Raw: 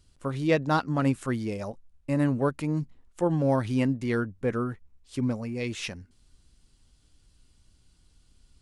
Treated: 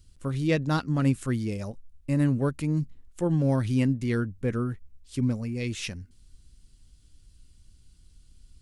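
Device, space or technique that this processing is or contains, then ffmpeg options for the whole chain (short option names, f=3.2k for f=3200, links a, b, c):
smiley-face EQ: -af "lowshelf=f=140:g=7.5,equalizer=f=820:t=o:w=1.6:g=-7,highshelf=f=7.5k:g=5"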